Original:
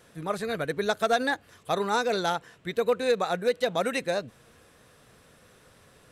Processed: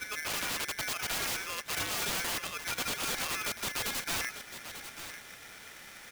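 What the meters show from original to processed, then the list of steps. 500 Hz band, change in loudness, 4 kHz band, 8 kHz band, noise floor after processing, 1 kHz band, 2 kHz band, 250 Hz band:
-18.5 dB, -5.5 dB, +1.5 dB, +9.0 dB, -50 dBFS, -9.5 dB, -2.0 dB, -12.0 dB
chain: reverse; compression 5:1, threshold -37 dBFS, peak gain reduction 16 dB; reverse; reverse echo 776 ms -7.5 dB; integer overflow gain 35.5 dB; delay 893 ms -11 dB; polarity switched at an audio rate 1.9 kHz; trim +7 dB

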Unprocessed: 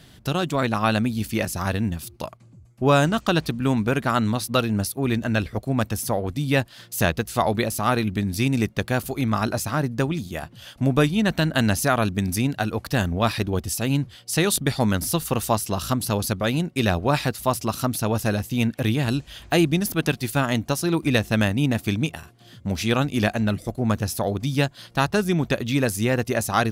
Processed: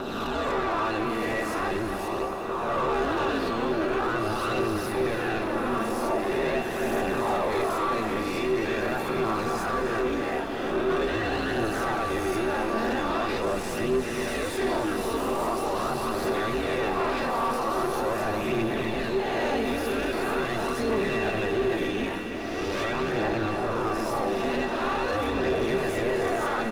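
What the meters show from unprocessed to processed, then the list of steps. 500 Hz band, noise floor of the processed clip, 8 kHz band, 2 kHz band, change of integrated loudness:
0.0 dB, -31 dBFS, -11.0 dB, -2.5 dB, -4.0 dB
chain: reverse spectral sustain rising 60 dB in 1.18 s; hum notches 50/100 Hz; peak limiter -9.5 dBFS, peak gain reduction 6 dB; waveshaping leveller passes 2; Schroeder reverb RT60 3.2 s, combs from 30 ms, DRR 10.5 dB; ring modulator 110 Hz; feedback comb 390 Hz, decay 0.39 s, harmonics odd, mix 80%; phaser 0.43 Hz, delay 4.5 ms, feedback 36%; overdrive pedal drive 21 dB, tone 1 kHz, clips at -16 dBFS; echo from a far wall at 48 m, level -8 dB; bit-crushed delay 367 ms, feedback 80%, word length 9-bit, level -14 dB

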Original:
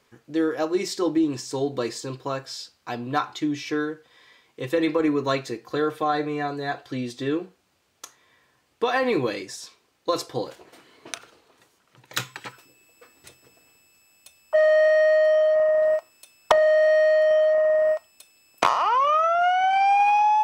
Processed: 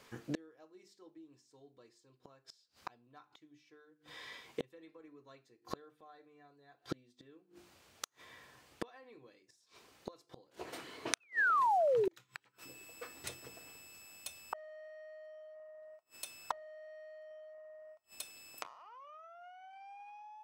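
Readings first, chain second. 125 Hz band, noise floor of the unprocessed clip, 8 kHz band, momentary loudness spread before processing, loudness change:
-19.5 dB, -67 dBFS, -9.5 dB, 16 LU, -17.0 dB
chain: painted sound fall, 11.20–12.14 s, 320–2700 Hz -33 dBFS; hum notches 50/100/150/200/250/300/350/400 Hz; inverted gate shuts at -28 dBFS, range -38 dB; trim +4 dB

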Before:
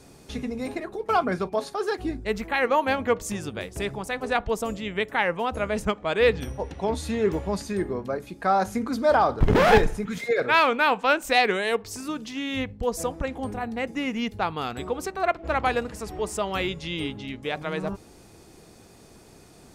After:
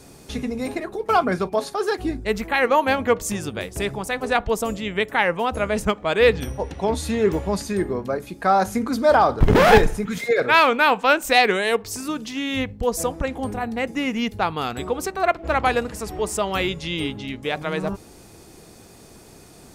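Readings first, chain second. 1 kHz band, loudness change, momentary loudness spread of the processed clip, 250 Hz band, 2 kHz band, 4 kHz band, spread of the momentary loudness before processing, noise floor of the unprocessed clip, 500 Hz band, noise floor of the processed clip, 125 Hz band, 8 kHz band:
+4.0 dB, +4.0 dB, 11 LU, +4.0 dB, +4.0 dB, +4.5 dB, 12 LU, -51 dBFS, +4.0 dB, -46 dBFS, +4.0 dB, +6.5 dB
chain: treble shelf 9.4 kHz +6 dB; trim +4 dB

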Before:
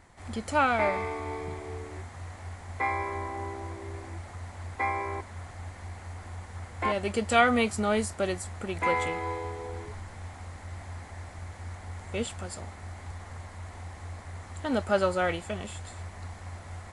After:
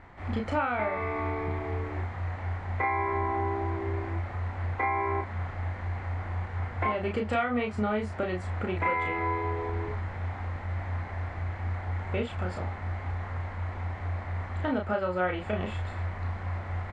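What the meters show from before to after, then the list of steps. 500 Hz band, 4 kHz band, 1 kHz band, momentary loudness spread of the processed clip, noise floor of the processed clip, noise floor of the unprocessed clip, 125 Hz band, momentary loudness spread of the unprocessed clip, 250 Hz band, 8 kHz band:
-1.0 dB, -7.5 dB, 0.0 dB, 7 LU, -39 dBFS, -46 dBFS, +7.0 dB, 17 LU, 0.0 dB, under -15 dB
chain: Chebyshev low-pass 2.1 kHz, order 2; compression 6:1, threshold -33 dBFS, peak gain reduction 15.5 dB; doubling 33 ms -3.5 dB; trim +5.5 dB

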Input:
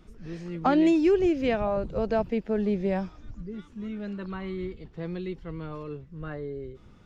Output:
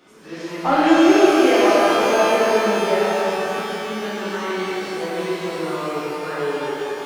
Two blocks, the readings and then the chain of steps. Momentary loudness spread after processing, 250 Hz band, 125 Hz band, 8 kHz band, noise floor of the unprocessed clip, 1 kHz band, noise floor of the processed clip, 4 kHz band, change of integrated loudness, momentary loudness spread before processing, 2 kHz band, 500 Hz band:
13 LU, +7.0 dB, -0.5 dB, no reading, -53 dBFS, +14.0 dB, -34 dBFS, +18.5 dB, +9.0 dB, 18 LU, +17.0 dB, +10.5 dB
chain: high-pass 420 Hz 12 dB/octave; in parallel at -1.5 dB: compression, threshold -40 dBFS, peak gain reduction 18.5 dB; on the sum: saturation -13.5 dBFS, distortion -26 dB; pitch-shifted reverb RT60 3.5 s, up +12 st, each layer -8 dB, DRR -10 dB; trim +1.5 dB

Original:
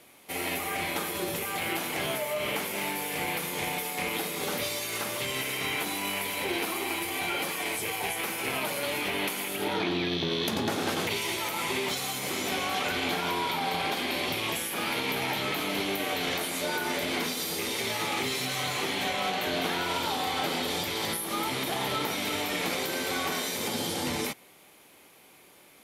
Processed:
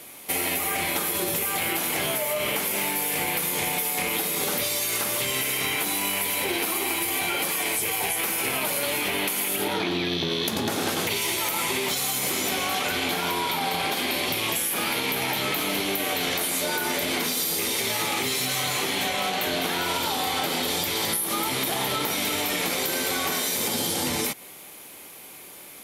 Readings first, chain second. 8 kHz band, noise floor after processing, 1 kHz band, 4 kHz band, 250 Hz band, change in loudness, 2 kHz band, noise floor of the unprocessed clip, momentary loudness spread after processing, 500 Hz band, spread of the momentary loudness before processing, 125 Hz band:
+8.5 dB, -44 dBFS, +2.5 dB, +4.5 dB, +2.5 dB, +5.0 dB, +3.5 dB, -56 dBFS, 1 LU, +2.5 dB, 2 LU, +2.5 dB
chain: treble shelf 6.9 kHz +9.5 dB; compression, threshold -31 dBFS, peak gain reduction 8.5 dB; trim +8 dB

